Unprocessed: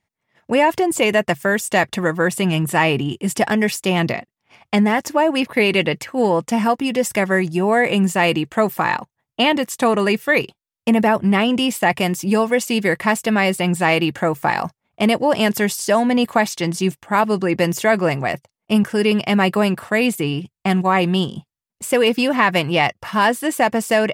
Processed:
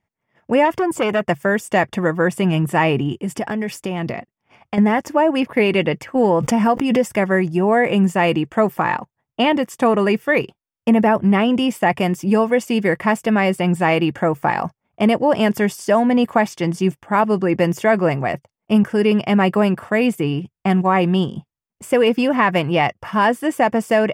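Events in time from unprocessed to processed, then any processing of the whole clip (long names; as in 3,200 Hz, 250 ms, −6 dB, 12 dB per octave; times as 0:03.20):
0:00.65–0:01.25: saturating transformer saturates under 1,200 Hz
0:03.21–0:04.78: downward compressor, threshold −20 dBFS
0:06.15–0:07.10: background raised ahead of every attack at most 43 dB per second
whole clip: parametric band 13,000 Hz −10.5 dB 2.9 octaves; notch filter 4,000 Hz, Q 5.7; level +1.5 dB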